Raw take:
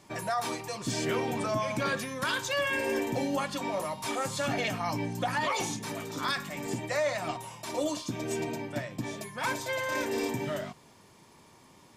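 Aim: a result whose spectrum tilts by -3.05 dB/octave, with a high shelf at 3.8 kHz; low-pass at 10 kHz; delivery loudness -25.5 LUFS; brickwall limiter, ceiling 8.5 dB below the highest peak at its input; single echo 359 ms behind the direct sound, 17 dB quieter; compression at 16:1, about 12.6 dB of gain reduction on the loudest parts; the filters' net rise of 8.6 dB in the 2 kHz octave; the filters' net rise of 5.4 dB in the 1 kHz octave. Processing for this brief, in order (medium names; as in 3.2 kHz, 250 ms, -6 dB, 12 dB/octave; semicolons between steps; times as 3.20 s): low-pass 10 kHz; peaking EQ 1 kHz +4 dB; peaking EQ 2 kHz +8 dB; treble shelf 3.8 kHz +6.5 dB; compression 16:1, threshold -32 dBFS; peak limiter -29 dBFS; delay 359 ms -17 dB; trim +12 dB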